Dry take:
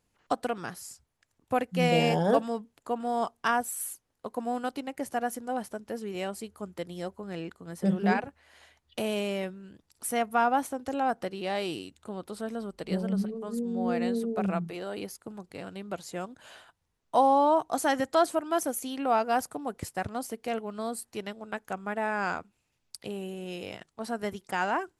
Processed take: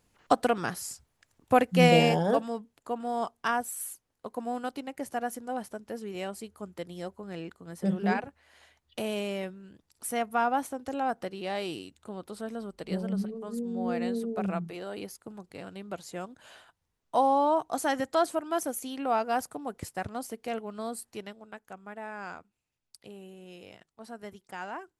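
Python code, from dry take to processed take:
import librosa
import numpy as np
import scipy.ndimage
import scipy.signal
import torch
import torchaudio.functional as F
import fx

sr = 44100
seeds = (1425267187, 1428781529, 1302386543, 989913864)

y = fx.gain(x, sr, db=fx.line((1.84, 5.5), (2.29, -2.0), (21.1, -2.0), (21.59, -10.0)))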